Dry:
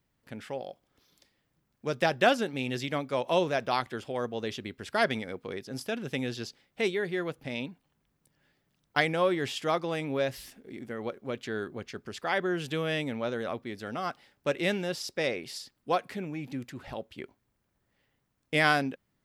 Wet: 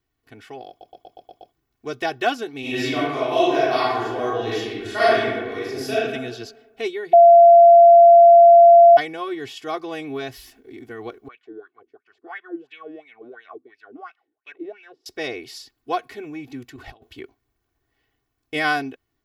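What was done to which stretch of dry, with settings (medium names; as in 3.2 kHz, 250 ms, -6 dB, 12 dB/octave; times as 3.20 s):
0.69 s: stutter in place 0.12 s, 7 plays
2.60–5.95 s: reverb throw, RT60 1.2 s, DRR -10 dB
7.13–8.97 s: bleep 685 Hz -6 dBFS
11.28–15.06 s: wah-wah 2.9 Hz 280–2600 Hz, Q 5.9
16.76–17.19 s: compressor with a negative ratio -44 dBFS, ratio -0.5
whole clip: peaking EQ 8.6 kHz -9 dB 0.21 oct; comb 2.7 ms, depth 100%; level rider gain up to 3.5 dB; trim -4 dB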